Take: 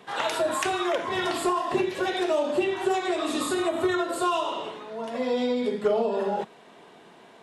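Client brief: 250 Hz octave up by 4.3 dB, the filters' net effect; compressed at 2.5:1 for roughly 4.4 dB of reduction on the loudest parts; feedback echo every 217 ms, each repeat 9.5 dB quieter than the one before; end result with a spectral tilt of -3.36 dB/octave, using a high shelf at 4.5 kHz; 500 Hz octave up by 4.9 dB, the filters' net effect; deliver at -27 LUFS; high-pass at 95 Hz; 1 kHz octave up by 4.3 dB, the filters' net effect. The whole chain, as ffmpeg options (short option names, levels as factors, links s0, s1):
-af "highpass=95,equalizer=f=250:t=o:g=3.5,equalizer=f=500:t=o:g=4.5,equalizer=f=1000:t=o:g=3.5,highshelf=f=4500:g=4,acompressor=threshold=0.0891:ratio=2.5,aecho=1:1:217|434|651|868:0.335|0.111|0.0365|0.012,volume=0.75"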